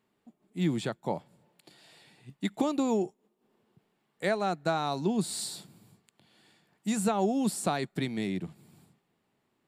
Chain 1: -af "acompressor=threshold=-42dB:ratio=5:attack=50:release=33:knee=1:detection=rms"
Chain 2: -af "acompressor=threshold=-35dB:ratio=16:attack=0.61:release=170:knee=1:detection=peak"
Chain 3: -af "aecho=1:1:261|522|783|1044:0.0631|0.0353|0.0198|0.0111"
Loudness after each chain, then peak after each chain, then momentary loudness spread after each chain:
−40.5, −43.0, −31.0 LKFS; −23.5, −29.5, −13.5 dBFS; 17, 20, 10 LU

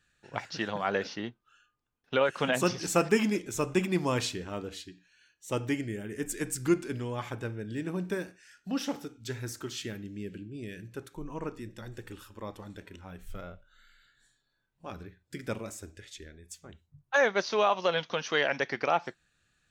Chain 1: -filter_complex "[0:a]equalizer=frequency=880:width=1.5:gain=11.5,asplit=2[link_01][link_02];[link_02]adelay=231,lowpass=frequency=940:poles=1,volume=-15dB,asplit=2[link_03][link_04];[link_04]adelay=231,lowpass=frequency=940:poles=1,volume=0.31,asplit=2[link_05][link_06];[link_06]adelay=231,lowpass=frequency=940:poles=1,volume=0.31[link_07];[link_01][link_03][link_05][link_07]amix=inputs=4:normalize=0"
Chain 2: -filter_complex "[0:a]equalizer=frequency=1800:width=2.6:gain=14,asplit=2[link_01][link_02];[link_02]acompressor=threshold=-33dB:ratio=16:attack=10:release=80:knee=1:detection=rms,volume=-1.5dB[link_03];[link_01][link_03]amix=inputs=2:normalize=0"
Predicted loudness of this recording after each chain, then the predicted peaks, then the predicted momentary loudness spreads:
−27.0, −25.5 LKFS; −6.0, −5.0 dBFS; 22, 18 LU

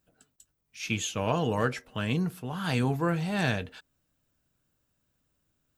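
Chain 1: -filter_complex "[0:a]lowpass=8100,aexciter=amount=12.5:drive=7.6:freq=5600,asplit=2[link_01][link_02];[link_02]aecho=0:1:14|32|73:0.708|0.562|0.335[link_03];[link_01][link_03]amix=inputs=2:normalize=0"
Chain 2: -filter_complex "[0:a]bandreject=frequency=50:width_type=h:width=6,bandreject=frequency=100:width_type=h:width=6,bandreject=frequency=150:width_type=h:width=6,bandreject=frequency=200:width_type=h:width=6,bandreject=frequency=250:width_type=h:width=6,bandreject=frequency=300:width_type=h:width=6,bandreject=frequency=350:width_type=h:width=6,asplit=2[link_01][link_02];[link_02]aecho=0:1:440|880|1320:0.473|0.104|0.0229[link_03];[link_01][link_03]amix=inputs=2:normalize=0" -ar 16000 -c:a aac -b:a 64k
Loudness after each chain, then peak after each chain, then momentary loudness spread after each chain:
−21.0, −30.0 LKFS; −2.0, −11.0 dBFS; 20, 11 LU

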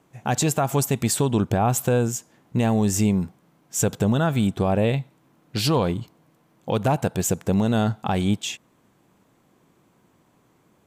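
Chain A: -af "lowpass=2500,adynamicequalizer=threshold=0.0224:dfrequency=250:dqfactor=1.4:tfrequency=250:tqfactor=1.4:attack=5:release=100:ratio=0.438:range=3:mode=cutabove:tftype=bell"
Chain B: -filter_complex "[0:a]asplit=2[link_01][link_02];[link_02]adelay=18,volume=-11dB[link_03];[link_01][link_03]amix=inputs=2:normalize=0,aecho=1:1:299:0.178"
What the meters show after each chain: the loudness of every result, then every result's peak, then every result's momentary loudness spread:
−24.5, −22.5 LKFS; −10.5, −9.0 dBFS; 9, 12 LU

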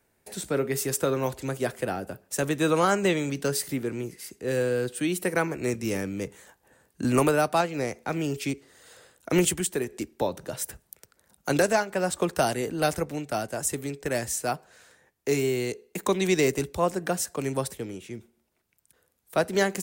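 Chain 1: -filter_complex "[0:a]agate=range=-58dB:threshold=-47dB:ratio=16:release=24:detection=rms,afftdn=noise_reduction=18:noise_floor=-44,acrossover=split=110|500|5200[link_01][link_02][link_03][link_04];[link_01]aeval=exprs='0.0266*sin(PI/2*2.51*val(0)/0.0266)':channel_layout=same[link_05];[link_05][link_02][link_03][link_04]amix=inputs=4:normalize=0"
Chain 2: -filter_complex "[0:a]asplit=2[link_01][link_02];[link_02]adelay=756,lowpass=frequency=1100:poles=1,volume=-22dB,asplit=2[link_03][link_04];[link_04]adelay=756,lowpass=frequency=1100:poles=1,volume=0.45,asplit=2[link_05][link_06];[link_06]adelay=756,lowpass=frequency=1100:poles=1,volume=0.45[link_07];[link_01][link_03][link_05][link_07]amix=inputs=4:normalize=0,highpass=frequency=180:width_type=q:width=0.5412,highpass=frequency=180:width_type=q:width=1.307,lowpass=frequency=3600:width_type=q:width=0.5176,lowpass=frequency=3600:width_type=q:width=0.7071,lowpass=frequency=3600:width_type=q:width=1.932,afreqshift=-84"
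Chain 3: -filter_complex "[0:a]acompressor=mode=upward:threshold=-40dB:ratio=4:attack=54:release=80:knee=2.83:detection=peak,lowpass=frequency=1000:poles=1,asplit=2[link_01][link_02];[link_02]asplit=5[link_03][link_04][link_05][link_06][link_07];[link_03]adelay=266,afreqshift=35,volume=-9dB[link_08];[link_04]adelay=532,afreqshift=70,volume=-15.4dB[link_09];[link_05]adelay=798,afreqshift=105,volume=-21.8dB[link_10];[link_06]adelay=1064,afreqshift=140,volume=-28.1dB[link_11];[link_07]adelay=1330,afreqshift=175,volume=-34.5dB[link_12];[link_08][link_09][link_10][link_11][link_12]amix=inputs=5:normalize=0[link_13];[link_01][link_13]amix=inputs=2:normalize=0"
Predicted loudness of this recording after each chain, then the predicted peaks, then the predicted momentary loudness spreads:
−27.0, −28.5, −28.5 LKFS; −9.0, −9.5, −12.0 dBFS; 11, 13, 16 LU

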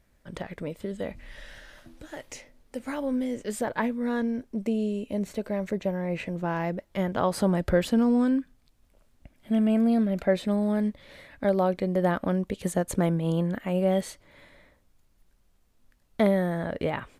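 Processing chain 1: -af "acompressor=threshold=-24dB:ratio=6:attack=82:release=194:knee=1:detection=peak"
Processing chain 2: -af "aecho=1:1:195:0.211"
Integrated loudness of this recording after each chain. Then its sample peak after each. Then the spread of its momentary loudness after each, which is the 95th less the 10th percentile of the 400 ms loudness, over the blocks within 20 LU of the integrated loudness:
−28.0, −27.0 LKFS; −10.0, −10.0 dBFS; 16, 18 LU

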